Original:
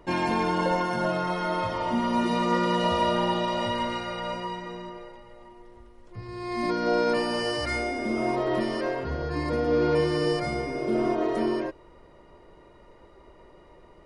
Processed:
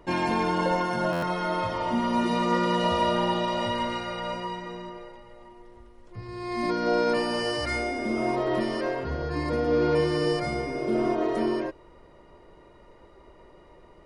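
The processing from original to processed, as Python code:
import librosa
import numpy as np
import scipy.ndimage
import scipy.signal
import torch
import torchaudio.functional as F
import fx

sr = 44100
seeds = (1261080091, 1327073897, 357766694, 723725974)

y = fx.buffer_glitch(x, sr, at_s=(1.12,), block=512, repeats=8)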